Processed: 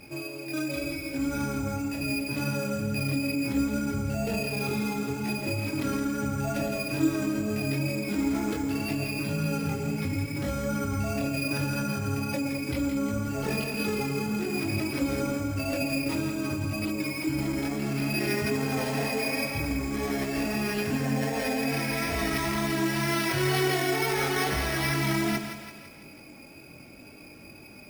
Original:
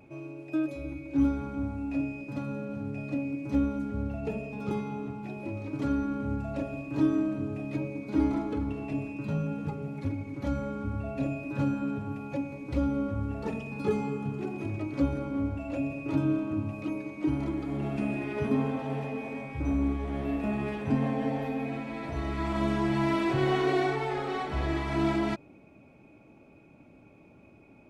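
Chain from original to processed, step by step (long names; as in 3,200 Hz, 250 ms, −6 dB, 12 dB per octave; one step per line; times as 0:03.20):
multi-voice chorus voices 2, 0.71 Hz, delay 22 ms, depth 2.6 ms
in parallel at 0 dB: compressor whose output falls as the input rises −37 dBFS, ratio −0.5
on the sum: tape wow and flutter 25 cents
flat-topped bell 2,500 Hz +8.5 dB
decimation without filtering 6×
on a send: echo with a time of its own for lows and highs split 840 Hz, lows 108 ms, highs 167 ms, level −7.5 dB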